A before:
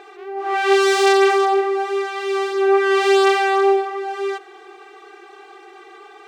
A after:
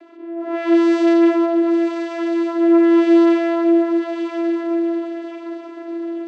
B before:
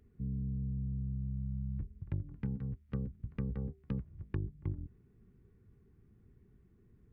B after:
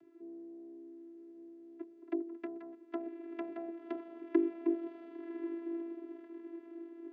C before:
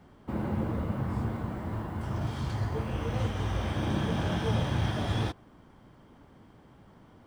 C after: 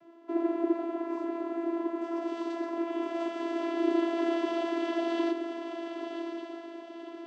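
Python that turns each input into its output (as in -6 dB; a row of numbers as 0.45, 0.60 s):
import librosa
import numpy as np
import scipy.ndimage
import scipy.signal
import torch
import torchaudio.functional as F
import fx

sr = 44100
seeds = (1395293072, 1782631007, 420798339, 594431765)

y = fx.echo_diffused(x, sr, ms=1090, feedback_pct=44, wet_db=-7)
y = fx.vocoder(y, sr, bands=16, carrier='saw', carrier_hz=336.0)
y = F.gain(torch.from_numpy(y), 1.0).numpy()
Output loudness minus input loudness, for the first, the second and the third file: +0.5, -1.0, -0.5 LU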